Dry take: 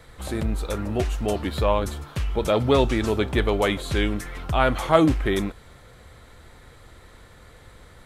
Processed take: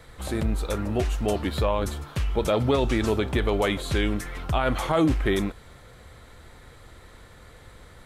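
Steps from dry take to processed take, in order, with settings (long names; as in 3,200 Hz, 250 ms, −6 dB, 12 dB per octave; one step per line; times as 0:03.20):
brickwall limiter −13 dBFS, peak gain reduction 9 dB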